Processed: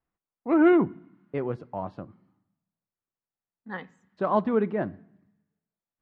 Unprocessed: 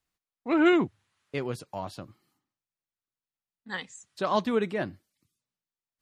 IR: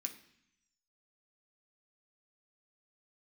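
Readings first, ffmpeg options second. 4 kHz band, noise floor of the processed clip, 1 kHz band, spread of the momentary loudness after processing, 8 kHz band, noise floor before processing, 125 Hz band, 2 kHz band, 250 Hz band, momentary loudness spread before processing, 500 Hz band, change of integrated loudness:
below −10 dB, below −85 dBFS, +1.5 dB, 20 LU, below −25 dB, below −85 dBFS, +2.5 dB, −3.0 dB, +3.0 dB, 18 LU, +2.5 dB, +3.0 dB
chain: -filter_complex "[0:a]lowpass=1200,asplit=2[link_01][link_02];[1:a]atrim=start_sample=2205,asetrate=35721,aresample=44100[link_03];[link_02][link_03]afir=irnorm=-1:irlink=0,volume=-11dB[link_04];[link_01][link_04]amix=inputs=2:normalize=0,volume=2.5dB"

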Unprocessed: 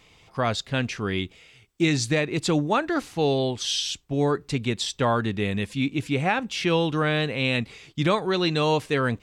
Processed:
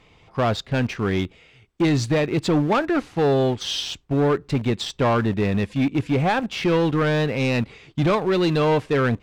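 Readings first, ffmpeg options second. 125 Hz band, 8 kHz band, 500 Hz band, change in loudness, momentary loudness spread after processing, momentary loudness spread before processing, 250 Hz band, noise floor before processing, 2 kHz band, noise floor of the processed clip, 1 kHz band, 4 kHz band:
+4.5 dB, −4.0 dB, +4.0 dB, +3.0 dB, 5 LU, 5 LU, +4.0 dB, −57 dBFS, 0.0 dB, −55 dBFS, +2.0 dB, −1.5 dB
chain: -filter_complex "[0:a]asplit=2[link_01][link_02];[link_02]aeval=exprs='val(0)*gte(abs(val(0)),0.0376)':channel_layout=same,volume=-5.5dB[link_03];[link_01][link_03]amix=inputs=2:normalize=0,lowpass=frequency=1800:poles=1,asoftclip=type=tanh:threshold=-18dB,volume=4dB"

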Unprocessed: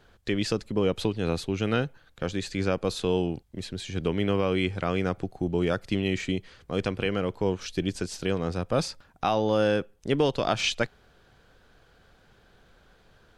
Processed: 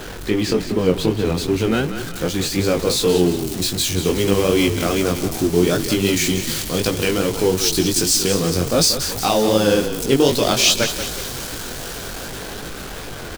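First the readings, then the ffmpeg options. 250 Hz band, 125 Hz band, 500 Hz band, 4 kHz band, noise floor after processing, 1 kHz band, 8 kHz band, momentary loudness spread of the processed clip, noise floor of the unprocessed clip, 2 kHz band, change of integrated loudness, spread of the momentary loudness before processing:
+9.0 dB, +7.5 dB, +9.0 dB, +14.0 dB, −31 dBFS, +6.5 dB, +21.5 dB, 13 LU, −60 dBFS, +8.5 dB, +10.0 dB, 7 LU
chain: -filter_complex "[0:a]aeval=exprs='val(0)+0.5*0.0282*sgn(val(0))':channel_layout=same,equalizer=frequency=330:width=1.1:gain=5,flanger=delay=17.5:depth=5.5:speed=2.6,acrossover=split=4200[link_01][link_02];[link_02]dynaudnorm=framelen=660:gausssize=9:maxgain=14.5dB[link_03];[link_01][link_03]amix=inputs=2:normalize=0,asplit=6[link_04][link_05][link_06][link_07][link_08][link_09];[link_05]adelay=183,afreqshift=-30,volume=-10dB[link_10];[link_06]adelay=366,afreqshift=-60,volume=-16.2dB[link_11];[link_07]adelay=549,afreqshift=-90,volume=-22.4dB[link_12];[link_08]adelay=732,afreqshift=-120,volume=-28.6dB[link_13];[link_09]adelay=915,afreqshift=-150,volume=-34.8dB[link_14];[link_04][link_10][link_11][link_12][link_13][link_14]amix=inputs=6:normalize=0,volume=6.5dB"

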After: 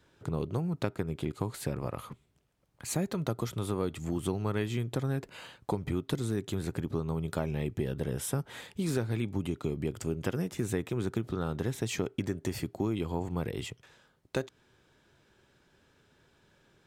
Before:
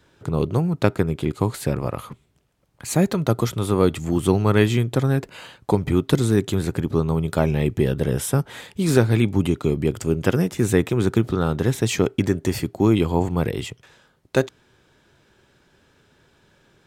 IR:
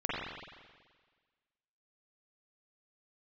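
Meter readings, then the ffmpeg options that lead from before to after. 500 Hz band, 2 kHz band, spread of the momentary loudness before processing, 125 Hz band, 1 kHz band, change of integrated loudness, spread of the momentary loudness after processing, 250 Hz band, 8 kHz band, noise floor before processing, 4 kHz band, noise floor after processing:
−13.0 dB, −12.5 dB, 7 LU, −12.0 dB, −12.0 dB, −12.5 dB, 5 LU, −12.5 dB, −9.5 dB, −61 dBFS, −10.5 dB, −68 dBFS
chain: -af "acompressor=threshold=-22dB:ratio=3,volume=-7dB"

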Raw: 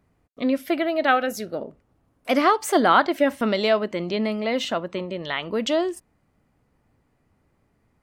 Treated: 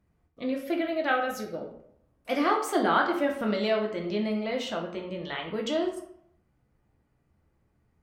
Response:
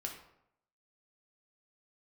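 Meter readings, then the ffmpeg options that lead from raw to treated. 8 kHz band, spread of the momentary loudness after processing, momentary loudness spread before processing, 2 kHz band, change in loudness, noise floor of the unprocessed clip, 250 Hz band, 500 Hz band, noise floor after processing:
−7.5 dB, 12 LU, 13 LU, −5.5 dB, −6.0 dB, −68 dBFS, −5.0 dB, −5.5 dB, −71 dBFS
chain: -filter_complex "[0:a]lowshelf=frequency=160:gain=5.5[link_01];[1:a]atrim=start_sample=2205,asetrate=48510,aresample=44100[link_02];[link_01][link_02]afir=irnorm=-1:irlink=0,volume=-5dB"

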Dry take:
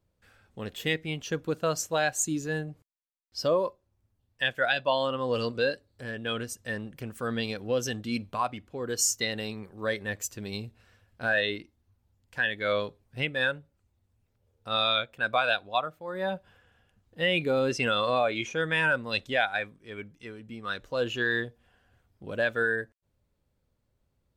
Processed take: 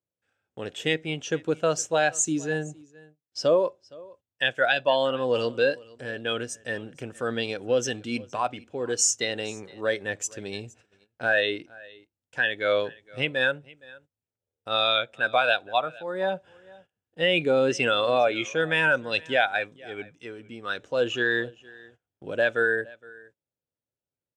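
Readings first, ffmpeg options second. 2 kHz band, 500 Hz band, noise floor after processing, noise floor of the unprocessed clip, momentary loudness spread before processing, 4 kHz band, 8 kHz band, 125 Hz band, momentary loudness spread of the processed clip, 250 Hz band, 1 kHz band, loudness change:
+3.0 dB, +4.5 dB, below −85 dBFS, −76 dBFS, 14 LU, +2.5 dB, +3.5 dB, −0.5 dB, 15 LU, +2.0 dB, +2.5 dB, +3.5 dB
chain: -af "highpass=160,equalizer=frequency=210:width_type=q:width=4:gain=-8,equalizer=frequency=1100:width_type=q:width=4:gain=-7,equalizer=frequency=2000:width_type=q:width=4:gain=-4,equalizer=frequency=4400:width_type=q:width=4:gain=-9,lowpass=frequency=8500:width=0.5412,lowpass=frequency=8500:width=1.3066,aecho=1:1:465:0.0708,agate=range=-19dB:threshold=-59dB:ratio=16:detection=peak,volume=5dB"

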